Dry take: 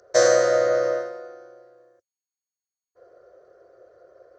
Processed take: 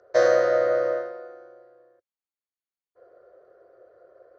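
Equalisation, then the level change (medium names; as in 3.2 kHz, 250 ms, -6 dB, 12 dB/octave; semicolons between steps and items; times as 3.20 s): distance through air 250 m; bass shelf 190 Hz -6.5 dB; 0.0 dB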